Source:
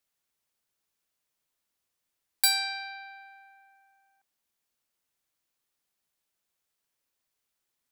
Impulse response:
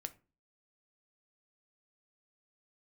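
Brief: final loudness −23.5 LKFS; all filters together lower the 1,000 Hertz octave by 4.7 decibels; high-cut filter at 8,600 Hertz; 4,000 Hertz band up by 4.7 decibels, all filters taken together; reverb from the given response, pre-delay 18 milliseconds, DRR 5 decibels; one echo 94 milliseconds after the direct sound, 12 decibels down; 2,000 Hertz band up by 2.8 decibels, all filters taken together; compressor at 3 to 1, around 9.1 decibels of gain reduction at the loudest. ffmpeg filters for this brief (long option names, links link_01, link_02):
-filter_complex "[0:a]lowpass=8600,equalizer=frequency=1000:width_type=o:gain=-8,equalizer=frequency=2000:width_type=o:gain=5,equalizer=frequency=4000:width_type=o:gain=5,acompressor=threshold=-29dB:ratio=3,aecho=1:1:94:0.251,asplit=2[link_01][link_02];[1:a]atrim=start_sample=2205,adelay=18[link_03];[link_02][link_03]afir=irnorm=-1:irlink=0,volume=-2dB[link_04];[link_01][link_04]amix=inputs=2:normalize=0,volume=10dB"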